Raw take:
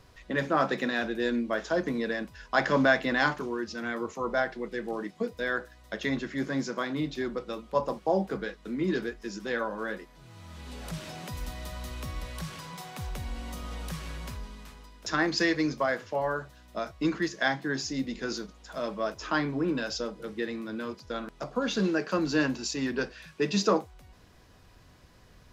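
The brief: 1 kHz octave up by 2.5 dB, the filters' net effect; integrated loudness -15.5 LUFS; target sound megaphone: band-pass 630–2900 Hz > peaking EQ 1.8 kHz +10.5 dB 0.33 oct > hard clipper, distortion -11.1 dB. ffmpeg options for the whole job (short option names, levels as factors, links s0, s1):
-af "highpass=630,lowpass=2900,equalizer=f=1000:t=o:g=3.5,equalizer=f=1800:t=o:w=0.33:g=10.5,asoftclip=type=hard:threshold=0.112,volume=5.31"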